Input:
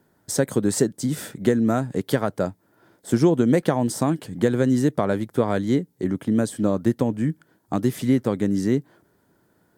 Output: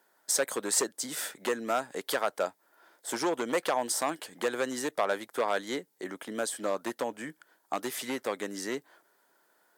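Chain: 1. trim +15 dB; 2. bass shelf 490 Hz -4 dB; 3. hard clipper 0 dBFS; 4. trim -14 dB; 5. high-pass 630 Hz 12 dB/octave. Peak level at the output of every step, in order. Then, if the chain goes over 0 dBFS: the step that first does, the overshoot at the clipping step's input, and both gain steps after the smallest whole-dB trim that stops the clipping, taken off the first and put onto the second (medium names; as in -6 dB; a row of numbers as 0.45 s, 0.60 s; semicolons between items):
+10.0 dBFS, +8.0 dBFS, 0.0 dBFS, -14.0 dBFS, -13.0 dBFS; step 1, 8.0 dB; step 1 +7 dB, step 4 -6 dB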